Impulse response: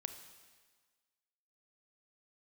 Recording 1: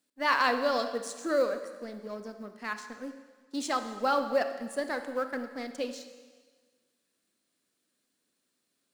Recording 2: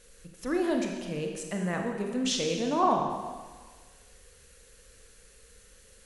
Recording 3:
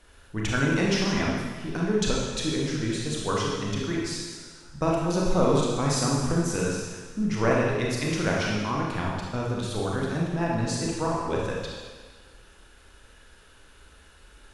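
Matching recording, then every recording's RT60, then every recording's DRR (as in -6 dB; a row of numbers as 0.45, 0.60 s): 1; 1.5, 1.5, 1.5 s; 8.0, 2.0, -3.5 dB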